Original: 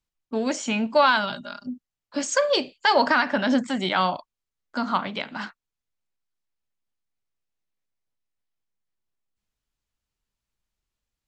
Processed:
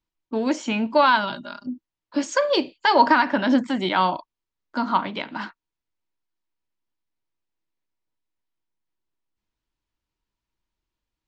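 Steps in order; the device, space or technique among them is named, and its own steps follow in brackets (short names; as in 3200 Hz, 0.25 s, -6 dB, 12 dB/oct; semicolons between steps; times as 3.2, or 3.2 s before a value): inside a cardboard box (LPF 5300 Hz 12 dB/oct; small resonant body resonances 320/950 Hz, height 9 dB)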